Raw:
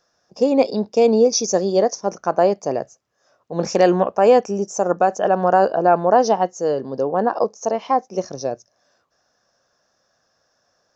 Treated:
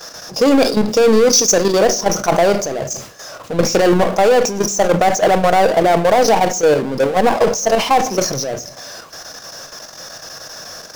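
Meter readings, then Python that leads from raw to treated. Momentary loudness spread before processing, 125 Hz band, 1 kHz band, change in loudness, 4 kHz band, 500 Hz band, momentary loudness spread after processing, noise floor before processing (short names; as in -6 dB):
12 LU, +6.5 dB, +3.5 dB, +4.5 dB, +11.5 dB, +3.5 dB, 19 LU, -68 dBFS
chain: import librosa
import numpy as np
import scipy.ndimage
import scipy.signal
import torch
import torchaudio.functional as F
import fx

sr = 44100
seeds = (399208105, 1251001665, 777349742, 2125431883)

y = fx.high_shelf(x, sr, hz=2700.0, db=8.0)
y = fx.power_curve(y, sr, exponent=0.5)
y = fx.level_steps(y, sr, step_db=11)
y = fx.room_shoebox(y, sr, seeds[0], volume_m3=760.0, walls='furnished', distance_m=0.6)
y = fx.sustainer(y, sr, db_per_s=100.0)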